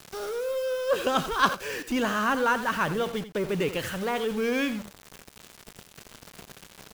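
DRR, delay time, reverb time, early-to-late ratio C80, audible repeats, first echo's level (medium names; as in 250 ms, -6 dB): no reverb, 85 ms, no reverb, no reverb, 1, -13.0 dB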